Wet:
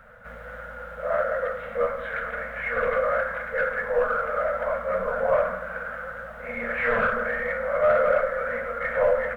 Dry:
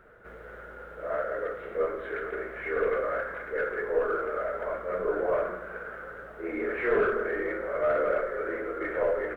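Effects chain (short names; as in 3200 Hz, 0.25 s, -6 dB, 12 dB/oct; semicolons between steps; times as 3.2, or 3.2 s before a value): elliptic band-stop 240–500 Hz, stop band 40 dB; gain +7 dB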